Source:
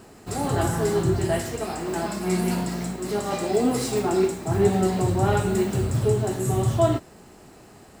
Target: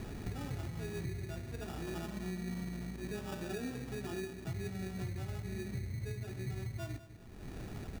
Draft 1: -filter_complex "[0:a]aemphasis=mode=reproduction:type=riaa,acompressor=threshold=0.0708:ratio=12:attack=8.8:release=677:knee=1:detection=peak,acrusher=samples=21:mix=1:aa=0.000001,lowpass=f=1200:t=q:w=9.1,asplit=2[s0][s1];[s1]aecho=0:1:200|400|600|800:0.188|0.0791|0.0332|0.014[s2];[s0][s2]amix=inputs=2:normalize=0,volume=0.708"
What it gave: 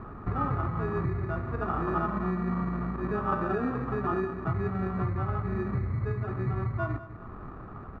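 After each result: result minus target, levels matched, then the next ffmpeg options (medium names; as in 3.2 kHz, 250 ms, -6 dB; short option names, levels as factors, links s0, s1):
compression: peak gain reduction -9.5 dB; 1 kHz band +8.5 dB
-filter_complex "[0:a]aemphasis=mode=reproduction:type=riaa,acompressor=threshold=0.0211:ratio=12:attack=8.8:release=677:knee=1:detection=peak,acrusher=samples=21:mix=1:aa=0.000001,lowpass=f=1200:t=q:w=9.1,asplit=2[s0][s1];[s1]aecho=0:1:200|400|600|800:0.188|0.0791|0.0332|0.014[s2];[s0][s2]amix=inputs=2:normalize=0,volume=0.708"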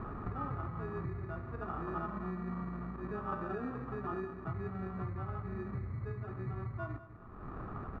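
1 kHz band +9.0 dB
-filter_complex "[0:a]aemphasis=mode=reproduction:type=riaa,acompressor=threshold=0.0211:ratio=12:attack=8.8:release=677:knee=1:detection=peak,acrusher=samples=21:mix=1:aa=0.000001,asplit=2[s0][s1];[s1]aecho=0:1:200|400|600|800:0.188|0.0791|0.0332|0.014[s2];[s0][s2]amix=inputs=2:normalize=0,volume=0.708"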